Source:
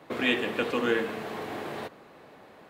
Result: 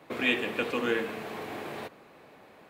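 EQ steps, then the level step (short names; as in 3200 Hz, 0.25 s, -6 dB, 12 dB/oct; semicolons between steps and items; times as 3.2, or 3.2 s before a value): bell 2400 Hz +4.5 dB 0.26 oct; high shelf 9200 Hz +4.5 dB; -2.5 dB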